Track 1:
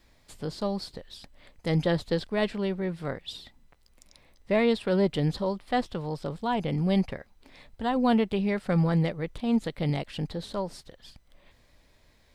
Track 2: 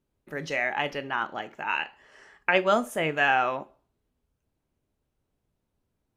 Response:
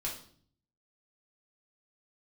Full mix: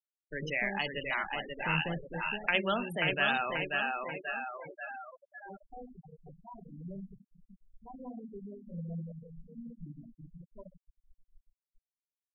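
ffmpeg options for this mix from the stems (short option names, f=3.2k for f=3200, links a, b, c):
-filter_complex "[0:a]aemphasis=mode=reproduction:type=50fm,acompressor=threshold=-43dB:ratio=1.5,volume=-4dB,asplit=3[a][b][c];[a]atrim=end=4.38,asetpts=PTS-STARTPTS,afade=t=out:st=4.376:d=0.004:c=hsin[d];[b]atrim=start=4.38:end=5.45,asetpts=PTS-STARTPTS,volume=0[e];[c]atrim=start=5.45,asetpts=PTS-STARTPTS,afade=t=in:d=0.004:c=hsin[f];[d][e][f]concat=n=3:v=0:a=1,asplit=3[g][h][i];[h]volume=-9.5dB[j];[i]volume=-19dB[k];[1:a]volume=-4.5dB,asplit=4[l][m][n][o];[m]volume=-23dB[p];[n]volume=-3.5dB[q];[o]apad=whole_len=544331[r];[g][r]sidechaingate=range=-33dB:threshold=-58dB:ratio=16:detection=peak[s];[2:a]atrim=start_sample=2205[t];[j][p]amix=inputs=2:normalize=0[u];[u][t]afir=irnorm=-1:irlink=0[v];[k][q]amix=inputs=2:normalize=0,aecho=0:1:535|1070|1605|2140|2675|3210|3745:1|0.5|0.25|0.125|0.0625|0.0312|0.0156[w];[s][l][v][w]amix=inputs=4:normalize=0,afftfilt=real='re*gte(hypot(re,im),0.0251)':imag='im*gte(hypot(re,im),0.0251)':win_size=1024:overlap=0.75,highshelf=f=2.1k:g=10,acrossover=split=220|3000[x][y][z];[y]acompressor=threshold=-42dB:ratio=1.5[aa];[x][aa][z]amix=inputs=3:normalize=0"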